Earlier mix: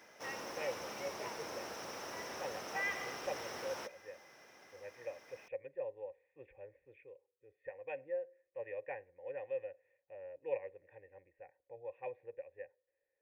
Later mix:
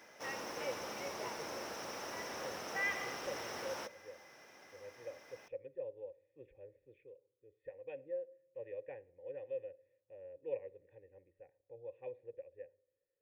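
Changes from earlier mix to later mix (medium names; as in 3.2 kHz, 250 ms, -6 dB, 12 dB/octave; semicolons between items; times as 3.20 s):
speech: add high-order bell 1.3 kHz -12 dB 2.3 oct; reverb: on, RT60 0.80 s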